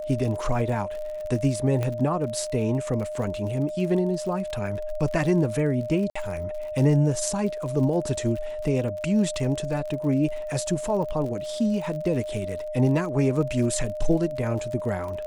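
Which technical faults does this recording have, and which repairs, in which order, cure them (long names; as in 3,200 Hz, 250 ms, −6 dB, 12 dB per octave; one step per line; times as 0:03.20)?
surface crackle 49 per second −33 dBFS
whistle 610 Hz −30 dBFS
0:01.83: click −15 dBFS
0:06.10–0:06.16: drop-out 55 ms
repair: click removal
notch filter 610 Hz, Q 30
repair the gap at 0:06.10, 55 ms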